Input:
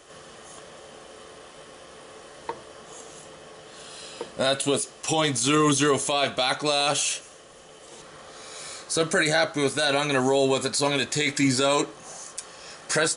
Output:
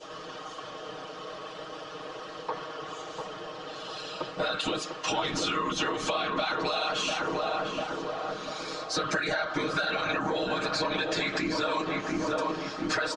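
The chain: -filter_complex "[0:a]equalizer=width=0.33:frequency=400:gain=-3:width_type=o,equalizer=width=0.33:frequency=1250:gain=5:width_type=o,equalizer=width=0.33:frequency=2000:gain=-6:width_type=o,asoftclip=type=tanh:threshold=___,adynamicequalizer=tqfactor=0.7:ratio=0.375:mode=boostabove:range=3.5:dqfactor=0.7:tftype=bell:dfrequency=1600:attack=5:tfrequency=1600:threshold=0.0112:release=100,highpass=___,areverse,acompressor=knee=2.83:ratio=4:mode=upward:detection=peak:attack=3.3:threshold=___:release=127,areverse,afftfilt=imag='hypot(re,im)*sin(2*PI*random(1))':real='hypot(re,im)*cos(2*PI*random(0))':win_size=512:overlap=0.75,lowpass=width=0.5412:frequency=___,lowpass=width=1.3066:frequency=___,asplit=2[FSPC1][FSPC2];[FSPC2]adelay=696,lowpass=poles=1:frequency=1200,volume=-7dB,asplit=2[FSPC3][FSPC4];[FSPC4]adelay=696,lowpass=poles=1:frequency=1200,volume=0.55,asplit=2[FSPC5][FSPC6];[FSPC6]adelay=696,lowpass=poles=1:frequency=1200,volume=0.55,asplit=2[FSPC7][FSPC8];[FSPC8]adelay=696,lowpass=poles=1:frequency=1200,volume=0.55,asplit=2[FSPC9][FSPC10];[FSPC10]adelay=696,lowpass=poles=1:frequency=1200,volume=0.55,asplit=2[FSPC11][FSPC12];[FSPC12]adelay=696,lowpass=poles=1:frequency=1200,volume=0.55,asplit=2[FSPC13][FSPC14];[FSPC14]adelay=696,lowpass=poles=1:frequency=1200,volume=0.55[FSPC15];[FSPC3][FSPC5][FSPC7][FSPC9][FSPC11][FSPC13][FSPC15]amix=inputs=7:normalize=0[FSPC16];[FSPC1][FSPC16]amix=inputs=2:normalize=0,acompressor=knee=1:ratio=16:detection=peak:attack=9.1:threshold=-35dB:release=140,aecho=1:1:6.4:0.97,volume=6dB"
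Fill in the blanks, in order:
-13.5dB, 160, -38dB, 5200, 5200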